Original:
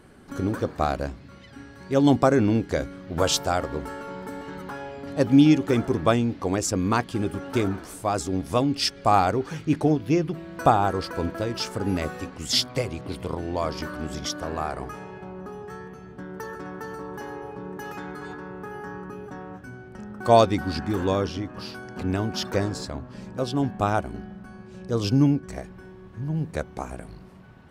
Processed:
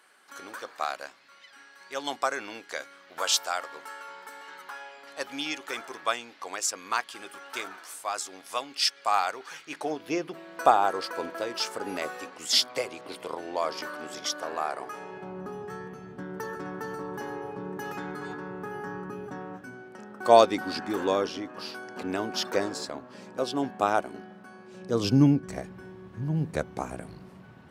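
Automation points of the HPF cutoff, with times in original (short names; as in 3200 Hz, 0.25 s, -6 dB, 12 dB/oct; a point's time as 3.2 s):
9.65 s 1100 Hz
10.06 s 500 Hz
14.85 s 500 Hz
15.42 s 120 Hz
19.31 s 120 Hz
19.98 s 330 Hz
24.64 s 330 Hz
25.22 s 100 Hz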